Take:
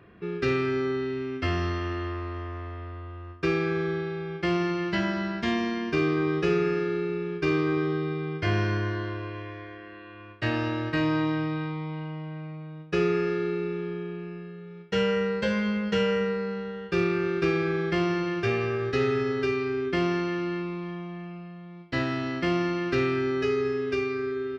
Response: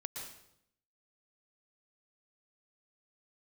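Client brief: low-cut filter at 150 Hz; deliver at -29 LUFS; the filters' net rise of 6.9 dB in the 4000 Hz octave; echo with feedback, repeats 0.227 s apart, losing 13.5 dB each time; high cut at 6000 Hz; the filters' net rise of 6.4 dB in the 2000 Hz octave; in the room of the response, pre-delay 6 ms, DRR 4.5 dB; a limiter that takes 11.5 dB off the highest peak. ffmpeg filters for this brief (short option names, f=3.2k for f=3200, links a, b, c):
-filter_complex "[0:a]highpass=150,lowpass=6k,equalizer=f=2k:t=o:g=6,equalizer=f=4k:t=o:g=7.5,alimiter=limit=-21.5dB:level=0:latency=1,aecho=1:1:227|454:0.211|0.0444,asplit=2[a][b];[1:a]atrim=start_sample=2205,adelay=6[c];[b][c]afir=irnorm=-1:irlink=0,volume=-3.5dB[d];[a][d]amix=inputs=2:normalize=0"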